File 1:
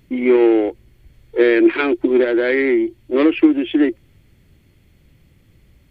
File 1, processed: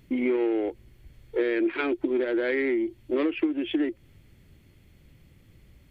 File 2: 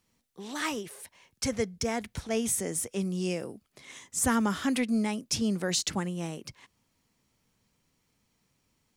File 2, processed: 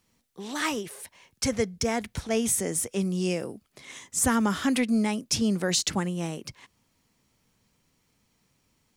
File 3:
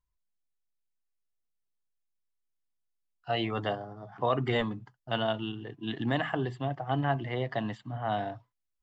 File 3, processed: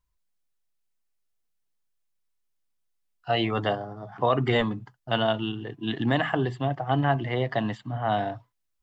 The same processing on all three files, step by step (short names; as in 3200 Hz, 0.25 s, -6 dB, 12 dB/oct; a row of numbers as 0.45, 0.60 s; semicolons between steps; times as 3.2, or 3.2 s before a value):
compressor 4:1, threshold -21 dBFS; match loudness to -27 LUFS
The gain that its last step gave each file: -2.5, +3.5, +5.5 dB